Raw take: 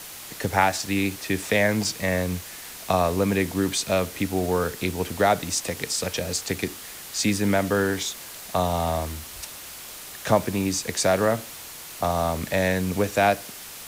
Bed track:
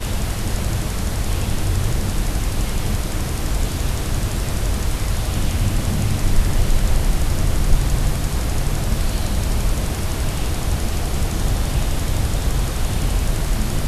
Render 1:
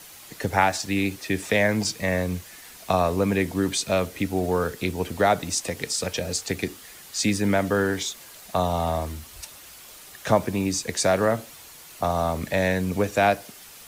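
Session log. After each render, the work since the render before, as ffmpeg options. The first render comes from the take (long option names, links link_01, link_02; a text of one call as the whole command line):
ffmpeg -i in.wav -af "afftdn=noise_reduction=7:noise_floor=-40" out.wav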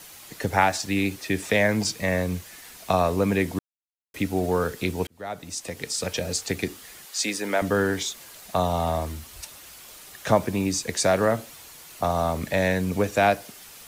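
ffmpeg -i in.wav -filter_complex "[0:a]asettb=1/sr,asplit=3[link_01][link_02][link_03];[link_01]atrim=end=7.054[link_04];[link_02]atrim=start=7.05:end=7.62,asetpts=PTS-STARTPTS,afade=type=in:duration=0.004:curve=qsin,afade=type=out:start_time=0.566:duration=0.004:curve=qsin,highpass=400[link_05];[link_03]atrim=start=7.616[link_06];[link_04][link_05]acrossfade=duration=0.004:curve1=hsin:curve2=qsin[link_07];[link_07][link_06]acrossfade=duration=0.004:curve1=qsin:curve2=hsin,asplit=4[link_08][link_09][link_10][link_11];[link_08]atrim=end=3.59,asetpts=PTS-STARTPTS,afade=type=out:start_time=3.586:duration=0.004:curve=hsin[link_12];[link_09]atrim=start=3.59:end=4.14,asetpts=PTS-STARTPTS,volume=0[link_13];[link_10]atrim=start=4.14:end=5.07,asetpts=PTS-STARTPTS,afade=type=in:duration=0.004:curve=hsin,afade=type=out:start_time=0.926:duration=0.004:curve=hsin[link_14];[link_11]atrim=start=5.07,asetpts=PTS-STARTPTS,afade=type=in:duration=1.07[link_15];[link_12][link_13][link_14][link_15]concat=n=4:v=0:a=1" out.wav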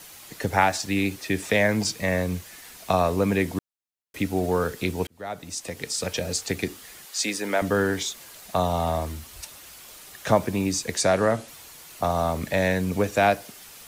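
ffmpeg -i in.wav -filter_complex "[0:a]asettb=1/sr,asplit=3[link_01][link_02][link_03];[link_01]atrim=end=11.024[link_04];[link_02]atrim=start=11.02:end=11.48,asetpts=PTS-STARTPTS,afade=type=in:duration=0.004:curve=qsin,afade=type=out:start_time=0.456:duration=0.004:curve=qsin,lowpass=frequency=11000:width=0.5412,lowpass=frequency=11000:width=1.3066[link_05];[link_03]atrim=start=11.476[link_06];[link_04][link_05]acrossfade=duration=0.004:curve1=hsin:curve2=qsin[link_07];[link_07][link_06]acrossfade=duration=0.004:curve1=qsin:curve2=hsin" out.wav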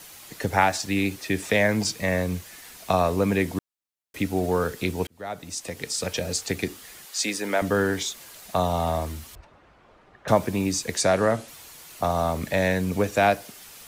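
ffmpeg -i in.wav -filter_complex "[0:a]asettb=1/sr,asplit=3[link_01][link_02][link_03];[link_01]atrim=end=9.354[link_04];[link_02]atrim=start=9.35:end=10.28,asetpts=PTS-STARTPTS,afade=type=in:duration=0.004:curve=qsin,afade=type=out:start_time=0.926:duration=0.004:curve=qsin,lowpass=1200[link_05];[link_03]atrim=start=10.276[link_06];[link_04][link_05]acrossfade=duration=0.004:curve1=hsin:curve2=qsin[link_07];[link_07][link_06]acrossfade=duration=0.004:curve1=qsin:curve2=hsin" out.wav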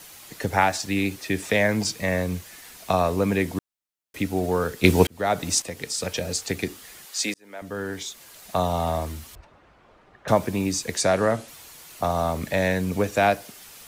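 ffmpeg -i in.wav -filter_complex "[0:a]asplit=4[link_01][link_02][link_03][link_04];[link_01]atrim=end=4.842[link_05];[link_02]atrim=start=4.838:end=5.622,asetpts=PTS-STARTPTS,volume=10.5dB[link_06];[link_03]atrim=start=5.618:end=7.34,asetpts=PTS-STARTPTS,afade=type=out:start_time=1.718:duration=0.004:curve=hsin[link_07];[link_04]atrim=start=7.34,asetpts=PTS-STARTPTS,afade=type=in:duration=1.23[link_08];[link_05][link_06]acrossfade=duration=0.004:curve1=hsin:curve2=hsin[link_09];[link_07][link_08]concat=n=2:v=0:a=1[link_10];[link_09][link_10]acrossfade=duration=0.004:curve1=hsin:curve2=hsin" out.wav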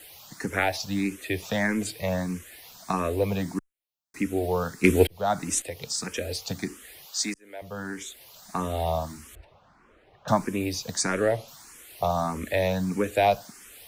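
ffmpeg -i in.wav -filter_complex "[0:a]aeval=exprs='0.891*(cos(1*acos(clip(val(0)/0.891,-1,1)))-cos(1*PI/2))+0.0316*(cos(4*acos(clip(val(0)/0.891,-1,1)))-cos(4*PI/2))':channel_layout=same,asplit=2[link_01][link_02];[link_02]afreqshift=1.6[link_03];[link_01][link_03]amix=inputs=2:normalize=1" out.wav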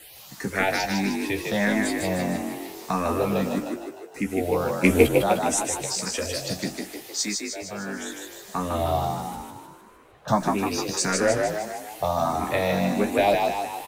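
ffmpeg -i in.wav -filter_complex "[0:a]asplit=2[link_01][link_02];[link_02]adelay=15,volume=-5.5dB[link_03];[link_01][link_03]amix=inputs=2:normalize=0,asplit=9[link_04][link_05][link_06][link_07][link_08][link_09][link_10][link_11][link_12];[link_05]adelay=153,afreqshift=49,volume=-3.5dB[link_13];[link_06]adelay=306,afreqshift=98,volume=-8.7dB[link_14];[link_07]adelay=459,afreqshift=147,volume=-13.9dB[link_15];[link_08]adelay=612,afreqshift=196,volume=-19.1dB[link_16];[link_09]adelay=765,afreqshift=245,volume=-24.3dB[link_17];[link_10]adelay=918,afreqshift=294,volume=-29.5dB[link_18];[link_11]adelay=1071,afreqshift=343,volume=-34.7dB[link_19];[link_12]adelay=1224,afreqshift=392,volume=-39.8dB[link_20];[link_04][link_13][link_14][link_15][link_16][link_17][link_18][link_19][link_20]amix=inputs=9:normalize=0" out.wav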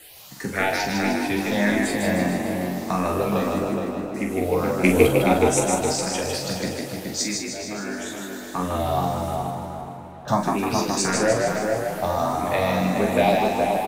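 ffmpeg -i in.wav -filter_complex "[0:a]asplit=2[link_01][link_02];[link_02]adelay=44,volume=-6.5dB[link_03];[link_01][link_03]amix=inputs=2:normalize=0,asplit=2[link_04][link_05];[link_05]adelay=421,lowpass=frequency=2000:poles=1,volume=-3.5dB,asplit=2[link_06][link_07];[link_07]adelay=421,lowpass=frequency=2000:poles=1,volume=0.41,asplit=2[link_08][link_09];[link_09]adelay=421,lowpass=frequency=2000:poles=1,volume=0.41,asplit=2[link_10][link_11];[link_11]adelay=421,lowpass=frequency=2000:poles=1,volume=0.41,asplit=2[link_12][link_13];[link_13]adelay=421,lowpass=frequency=2000:poles=1,volume=0.41[link_14];[link_04][link_06][link_08][link_10][link_12][link_14]amix=inputs=6:normalize=0" out.wav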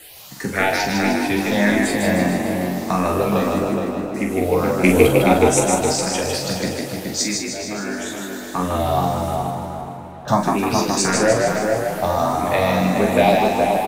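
ffmpeg -i in.wav -af "volume=4dB,alimiter=limit=-1dB:level=0:latency=1" out.wav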